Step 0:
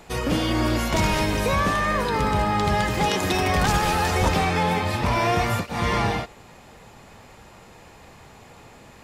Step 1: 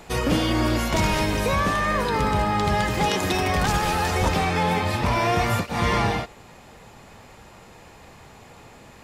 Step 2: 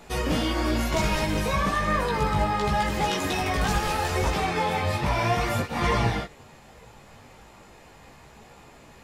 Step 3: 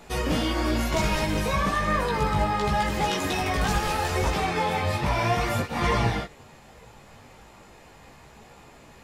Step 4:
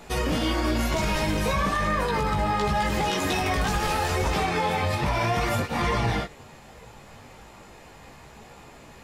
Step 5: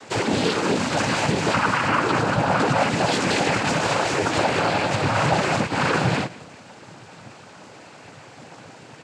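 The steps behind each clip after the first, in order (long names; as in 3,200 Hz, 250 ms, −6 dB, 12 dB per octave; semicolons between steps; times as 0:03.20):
speech leveller 0.5 s
multi-voice chorus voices 4, 0.64 Hz, delay 17 ms, depth 4 ms
no processing that can be heard
brickwall limiter −18.5 dBFS, peak gain reduction 6 dB; level +2.5 dB
cochlear-implant simulation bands 8; single-tap delay 183 ms −20.5 dB; level +5 dB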